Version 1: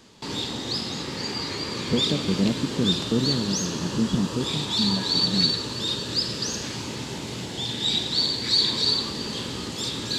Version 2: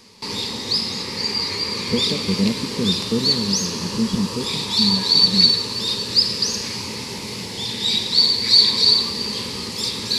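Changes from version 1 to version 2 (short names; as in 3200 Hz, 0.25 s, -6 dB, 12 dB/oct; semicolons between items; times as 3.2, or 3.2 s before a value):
background: add high shelf 2700 Hz +7.5 dB; master: add ripple EQ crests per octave 0.88, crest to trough 8 dB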